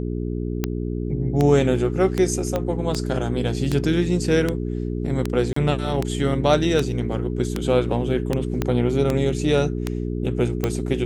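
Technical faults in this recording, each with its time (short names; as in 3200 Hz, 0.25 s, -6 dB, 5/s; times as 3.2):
hum 60 Hz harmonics 7 -26 dBFS
tick 78 rpm -8 dBFS
2.56 pop -11 dBFS
5.53–5.56 gap 34 ms
8.62 pop -9 dBFS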